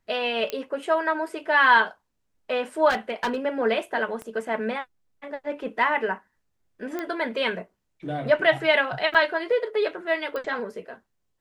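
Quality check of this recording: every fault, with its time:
0.5 pop -13 dBFS
2.89–3.36 clipped -21 dBFS
4.22 pop -23 dBFS
6.99 pop -17 dBFS
9.14–9.15 gap 5.8 ms
10.36 pop -20 dBFS

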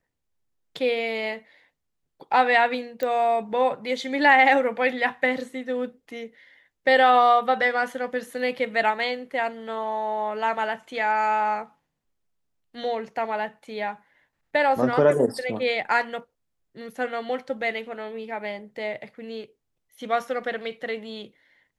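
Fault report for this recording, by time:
3.03 pop -15 dBFS

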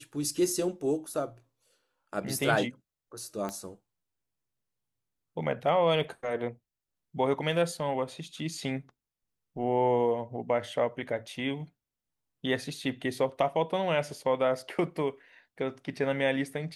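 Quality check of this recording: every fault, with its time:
3.49 pop -21 dBFS

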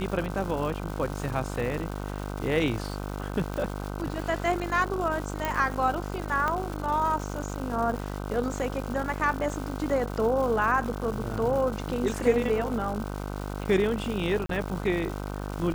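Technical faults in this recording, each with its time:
buzz 50 Hz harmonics 31 -34 dBFS
crackle 420/s -34 dBFS
3.54 pop -20 dBFS
5.45 pop
6.48 pop -15 dBFS
14.46–14.49 gap 33 ms

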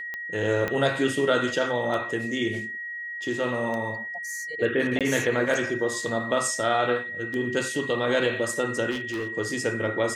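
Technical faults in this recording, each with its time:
tick 33 1/3 rpm -20 dBFS
tone 1900 Hz -32 dBFS
0.68 pop -14 dBFS
4.99–5.01 gap 17 ms
8.9–9.28 clipped -26 dBFS

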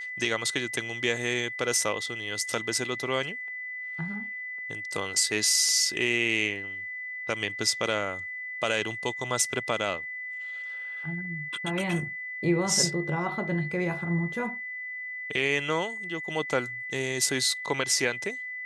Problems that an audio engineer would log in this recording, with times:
tone 2000 Hz -34 dBFS

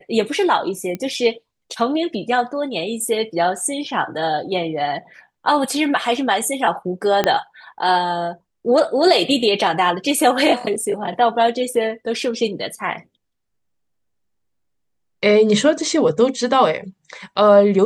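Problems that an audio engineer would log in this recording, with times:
0.95 pop -14 dBFS
7.24 pop -3 dBFS

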